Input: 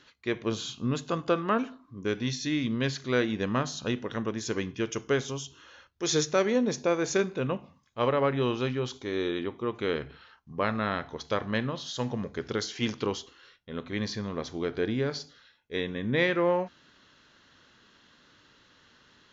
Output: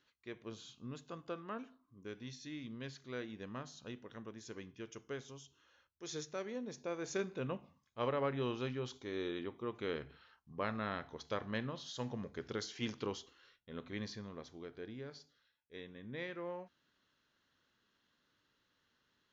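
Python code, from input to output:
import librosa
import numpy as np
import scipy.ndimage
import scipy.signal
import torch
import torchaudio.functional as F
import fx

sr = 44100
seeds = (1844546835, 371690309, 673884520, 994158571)

y = fx.gain(x, sr, db=fx.line((6.68, -17.5), (7.33, -10.0), (13.91, -10.0), (14.71, -18.5)))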